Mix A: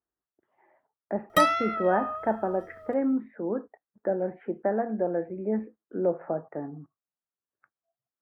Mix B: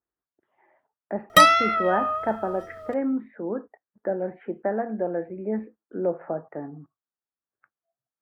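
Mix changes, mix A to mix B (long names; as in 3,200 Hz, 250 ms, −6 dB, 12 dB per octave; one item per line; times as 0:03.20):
background +6.0 dB
master: add parametric band 4,800 Hz +5.5 dB 2.6 octaves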